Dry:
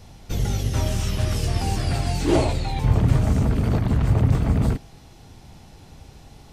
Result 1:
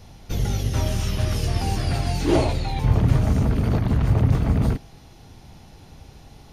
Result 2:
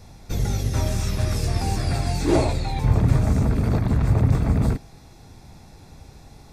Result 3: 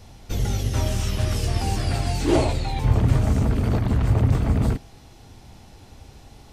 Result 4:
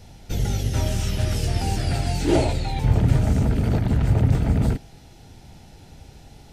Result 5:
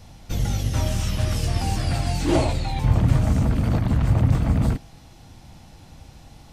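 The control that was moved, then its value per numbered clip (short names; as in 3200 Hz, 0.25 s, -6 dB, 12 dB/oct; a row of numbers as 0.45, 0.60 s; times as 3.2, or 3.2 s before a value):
notch, frequency: 7800, 3000, 160, 1100, 410 Hz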